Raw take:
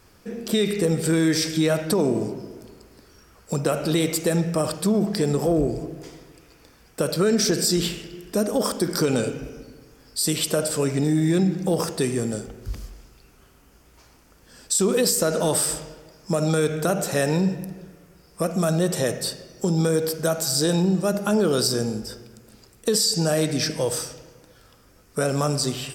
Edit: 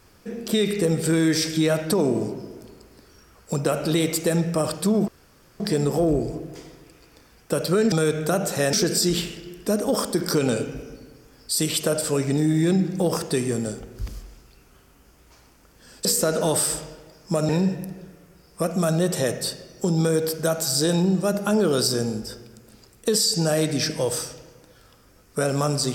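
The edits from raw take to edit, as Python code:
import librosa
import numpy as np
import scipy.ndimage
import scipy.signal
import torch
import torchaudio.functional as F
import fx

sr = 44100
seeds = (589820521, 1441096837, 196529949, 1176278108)

y = fx.edit(x, sr, fx.insert_room_tone(at_s=5.08, length_s=0.52),
    fx.cut(start_s=14.72, length_s=0.32),
    fx.move(start_s=16.48, length_s=0.81, to_s=7.4), tone=tone)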